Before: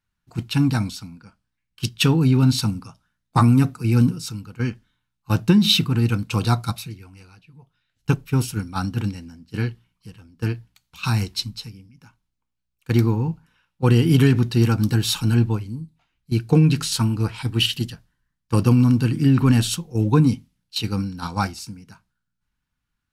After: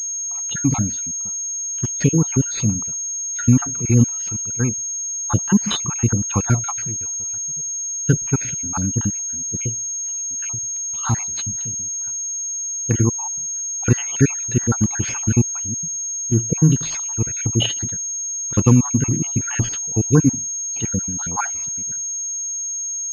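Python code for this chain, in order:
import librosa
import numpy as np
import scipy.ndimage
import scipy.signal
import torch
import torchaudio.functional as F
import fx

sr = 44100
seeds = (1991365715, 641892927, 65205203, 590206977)

y = fx.spec_dropout(x, sr, seeds[0], share_pct=56)
y = fx.pwm(y, sr, carrier_hz=6500.0)
y = y * librosa.db_to_amplitude(3.5)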